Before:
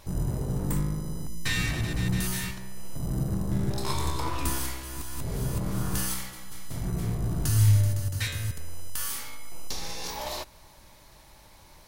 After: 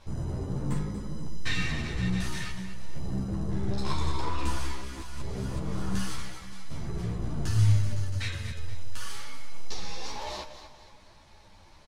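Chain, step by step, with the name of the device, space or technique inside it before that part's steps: feedback delay 238 ms, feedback 40%, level -11 dB; string-machine ensemble chorus (three-phase chorus; low-pass 5.7 kHz 12 dB/octave); trim +1 dB

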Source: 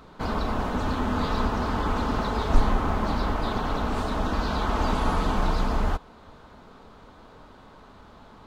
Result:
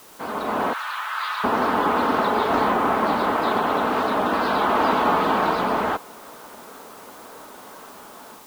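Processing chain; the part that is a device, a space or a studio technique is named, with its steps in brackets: dictaphone (band-pass 310–3100 Hz; level rider gain up to 9 dB; wow and flutter; white noise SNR 26 dB); 0.73–1.44 s: high-pass 1.2 kHz 24 dB/octave

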